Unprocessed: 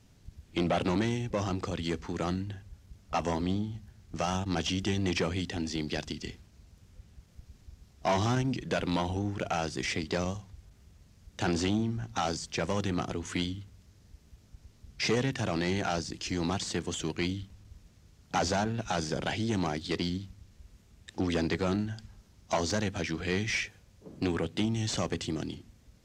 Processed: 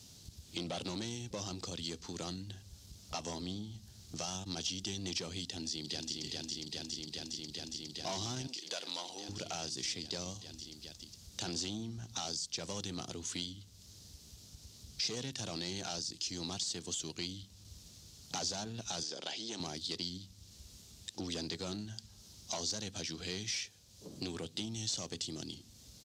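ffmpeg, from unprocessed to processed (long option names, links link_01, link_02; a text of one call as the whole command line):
ffmpeg -i in.wav -filter_complex "[0:a]asplit=2[link_01][link_02];[link_02]afade=type=in:start_time=5.43:duration=0.01,afade=type=out:start_time=6.23:duration=0.01,aecho=0:1:410|820|1230|1640|2050|2460|2870|3280|3690|4100|4510|4920:0.707946|0.601754|0.511491|0.434767|0.369552|0.314119|0.267001|0.226951|0.192909|0.163972|0.139376|0.11847[link_03];[link_01][link_03]amix=inputs=2:normalize=0,asettb=1/sr,asplit=3[link_04][link_05][link_06];[link_04]atrim=end=8.474[link_07];[link_05]atrim=start=8.47:end=9.29,asetpts=PTS-STARTPTS,afade=type=in:duration=0.004:curve=qsin,afade=type=out:start_time=0.816:duration=0.004:curve=qsin,highpass=500[link_08];[link_06]atrim=start=9.286[link_09];[link_07][link_08]acrossfade=duration=0.004:curve1=hsin:curve2=qsin[link_10];[link_10][link_09]acrossfade=duration=0.004:curve1=qsin:curve2=hsin,asettb=1/sr,asplit=3[link_11][link_12][link_13];[link_11]atrim=end=19.034[link_14];[link_12]atrim=start=19.03:end=19.6,asetpts=PTS-STARTPTS,afade=type=in:duration=0.004:curve=qsin,afade=type=out:start_time=0.566:duration=0.004:curve=qsin,highpass=340,lowpass=6300[link_15];[link_13]atrim=start=19.596[link_16];[link_14][link_15]acrossfade=duration=0.004:curve1=hsin:curve2=qsin[link_17];[link_17][link_16]acrossfade=duration=0.004:curve1=qsin:curve2=hsin,highpass=64,highshelf=frequency=2900:width_type=q:width=1.5:gain=12,acompressor=threshold=-49dB:ratio=2,volume=1dB" out.wav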